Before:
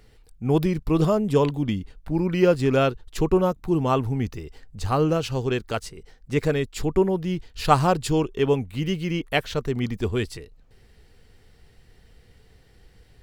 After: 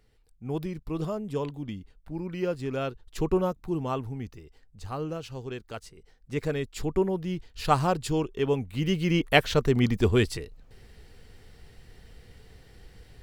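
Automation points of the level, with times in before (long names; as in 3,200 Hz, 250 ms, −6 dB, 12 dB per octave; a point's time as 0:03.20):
0:02.79 −11 dB
0:03.29 −4.5 dB
0:04.43 −12 dB
0:05.62 −12 dB
0:06.75 −5 dB
0:08.50 −5 dB
0:09.22 +3 dB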